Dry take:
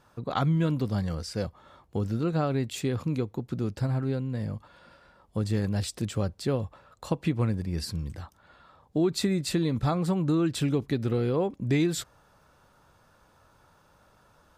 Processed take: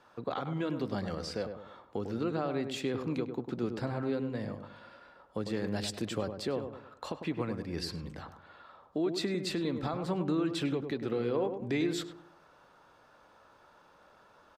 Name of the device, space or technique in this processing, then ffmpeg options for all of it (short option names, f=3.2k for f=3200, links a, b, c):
DJ mixer with the lows and highs turned down: -filter_complex "[0:a]acrossover=split=240 5200:gain=0.2 1 0.251[a][b][c];[a][b][c]amix=inputs=3:normalize=0,alimiter=level_in=0.5dB:limit=-24dB:level=0:latency=1:release=334,volume=-0.5dB,asettb=1/sr,asplit=3[d][e][f];[d]atrim=end=5.674[g];[e]atrim=start=5.67:end=6.52,asetpts=PTS-STARTPTS,afade=t=in:d=0.004:c=qsin,afade=t=out:st=0.846:d=0.004:c=qsin,highshelf=f=8.5k:g=6.5[h];[f]atrim=start=6.516[i];[g][h]acrossfade=d=0.004:c1=hsin:c2=qsin[j];[j][i]acrossfade=d=0.004:c1=qsin:c2=hsin,asplit=2[k][l];[l]adelay=101,lowpass=f=1.2k:p=1,volume=-6.5dB,asplit=2[m][n];[n]adelay=101,lowpass=f=1.2k:p=1,volume=0.42,asplit=2[o][p];[p]adelay=101,lowpass=f=1.2k:p=1,volume=0.42,asplit=2[q][r];[r]adelay=101,lowpass=f=1.2k:p=1,volume=0.42,asplit=2[s][t];[t]adelay=101,lowpass=f=1.2k:p=1,volume=0.42[u];[k][m][o][q][s][u]amix=inputs=6:normalize=0,volume=1.5dB"